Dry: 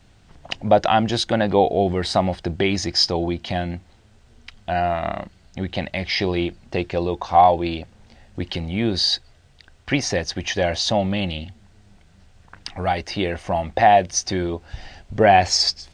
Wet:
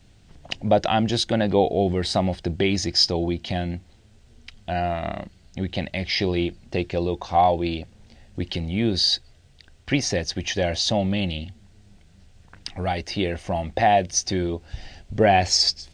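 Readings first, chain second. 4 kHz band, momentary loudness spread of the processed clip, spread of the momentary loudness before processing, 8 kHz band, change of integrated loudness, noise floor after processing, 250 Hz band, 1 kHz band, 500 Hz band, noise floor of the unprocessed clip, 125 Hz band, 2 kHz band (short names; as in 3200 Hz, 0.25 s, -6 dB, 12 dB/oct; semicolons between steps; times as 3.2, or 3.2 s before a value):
-0.5 dB, 14 LU, 17 LU, -0.5 dB, -2.5 dB, -54 dBFS, -0.5 dB, -5.0 dB, -3.0 dB, -53 dBFS, 0.0 dB, -3.5 dB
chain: bell 1100 Hz -7 dB 1.6 oct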